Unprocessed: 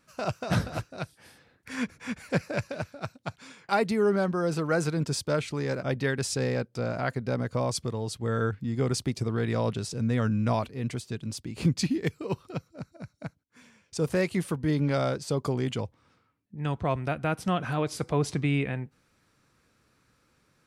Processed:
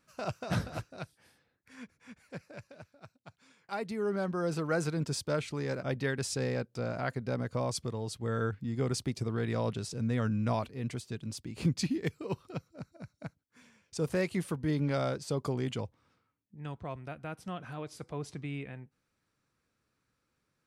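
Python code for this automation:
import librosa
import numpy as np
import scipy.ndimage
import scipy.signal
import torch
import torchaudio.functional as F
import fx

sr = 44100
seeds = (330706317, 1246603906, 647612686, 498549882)

y = fx.gain(x, sr, db=fx.line((0.93, -5.5), (1.72, -17.0), (3.28, -17.0), (4.42, -4.5), (15.85, -4.5), (16.9, -12.5)))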